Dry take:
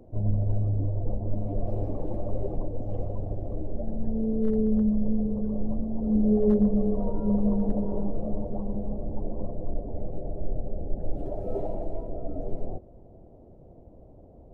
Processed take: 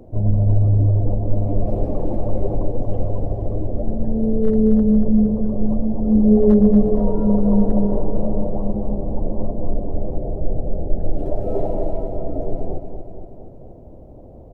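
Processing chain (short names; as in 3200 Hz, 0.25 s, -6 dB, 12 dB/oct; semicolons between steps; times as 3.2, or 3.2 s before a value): feedback echo 0.234 s, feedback 58%, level -7.5 dB; gain +8 dB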